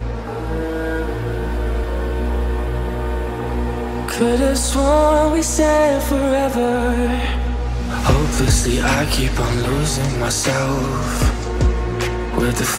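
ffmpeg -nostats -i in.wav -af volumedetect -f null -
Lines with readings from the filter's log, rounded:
mean_volume: -17.8 dB
max_volume: -4.1 dB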